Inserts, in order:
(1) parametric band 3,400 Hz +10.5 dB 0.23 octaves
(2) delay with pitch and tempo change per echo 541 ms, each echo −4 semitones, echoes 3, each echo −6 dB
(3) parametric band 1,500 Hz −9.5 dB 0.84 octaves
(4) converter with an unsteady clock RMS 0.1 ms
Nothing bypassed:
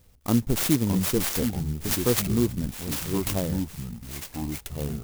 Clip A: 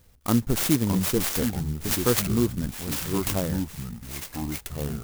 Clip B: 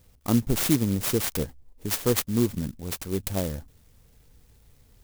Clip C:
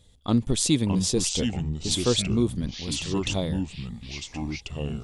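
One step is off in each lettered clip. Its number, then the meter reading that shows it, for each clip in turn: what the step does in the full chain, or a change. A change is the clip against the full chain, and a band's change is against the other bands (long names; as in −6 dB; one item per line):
3, 1 kHz band +2.0 dB
2, change in crest factor +1.5 dB
4, 4 kHz band +6.0 dB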